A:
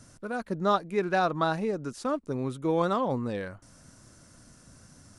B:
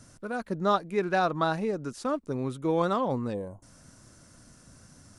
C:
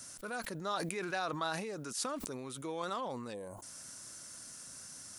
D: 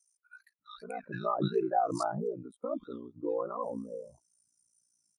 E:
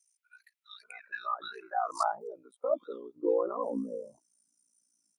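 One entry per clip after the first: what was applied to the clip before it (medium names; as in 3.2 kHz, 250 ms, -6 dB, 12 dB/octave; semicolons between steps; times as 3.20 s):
time-frequency box 3.34–3.63 s, 1.1–6.2 kHz -21 dB
compression 2.5:1, threshold -38 dBFS, peak gain reduction 12.5 dB; tilt EQ +3.5 dB/octave; decay stretcher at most 32 dB/s
bands offset in time highs, lows 590 ms, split 1.5 kHz; ring modulator 29 Hz; spectral contrast expander 2.5:1; trim +2.5 dB
high-pass sweep 2.3 kHz -> 250 Hz, 0.82–3.87 s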